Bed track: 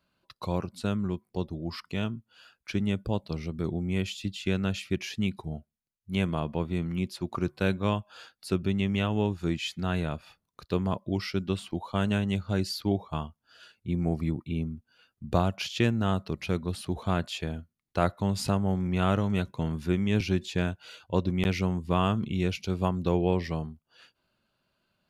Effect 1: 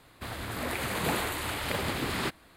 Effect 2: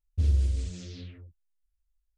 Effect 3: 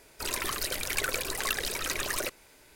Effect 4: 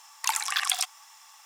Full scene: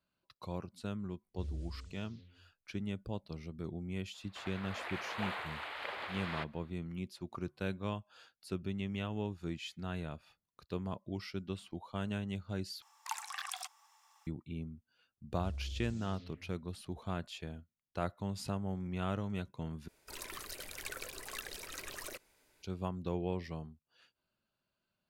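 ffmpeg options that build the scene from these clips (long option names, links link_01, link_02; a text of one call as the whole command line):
ffmpeg -i bed.wav -i cue0.wav -i cue1.wav -i cue2.wav -i cue3.wav -filter_complex "[2:a]asplit=2[link_01][link_02];[0:a]volume=-11dB[link_03];[1:a]acrossover=split=490 3900:gain=0.0631 1 0.0708[link_04][link_05][link_06];[link_04][link_05][link_06]amix=inputs=3:normalize=0[link_07];[4:a]equalizer=frequency=870:width_type=o:width=1.8:gain=7.5[link_08];[link_02]alimiter=level_in=2dB:limit=-24dB:level=0:latency=1:release=71,volume=-2dB[link_09];[link_03]asplit=3[link_10][link_11][link_12];[link_10]atrim=end=12.824[link_13];[link_08]atrim=end=1.45,asetpts=PTS-STARTPTS,volume=-17.5dB[link_14];[link_11]atrim=start=14.266:end=19.884[link_15];[3:a]atrim=end=2.75,asetpts=PTS-STARTPTS,volume=-13.5dB[link_16];[link_12]atrim=start=22.626[link_17];[link_01]atrim=end=2.17,asetpts=PTS-STARTPTS,volume=-17.5dB,afade=type=in:duration=0.004:curve=hsin,afade=type=out:start_time=2.166:duration=0.004:curve=hsin,adelay=1200[link_18];[link_07]atrim=end=2.56,asetpts=PTS-STARTPTS,volume=-7dB,afade=type=in:duration=0.004:curve=hsin,afade=type=out:start_time=2.556:duration=0.004:curve=hsin,adelay=4140[link_19];[link_09]atrim=end=2.17,asetpts=PTS-STARTPTS,volume=-10.5dB,afade=type=in:duration=0.004:curve=hsin,afade=type=out:start_time=2.166:duration=0.004:curve=hsin,adelay=15230[link_20];[link_13][link_14]acrossfade=duration=0.004:curve1=hsin:curve2=hsin[link_21];[link_21][link_15]acrossfade=duration=0.004:curve1=hsin:curve2=hsin[link_22];[link_22][link_16]acrossfade=duration=0.004:curve1=hsin:curve2=hsin[link_23];[link_23][link_17]acrossfade=duration=0.004:curve1=hsin:curve2=hsin[link_24];[link_24][link_18][link_19][link_20]amix=inputs=4:normalize=0" out.wav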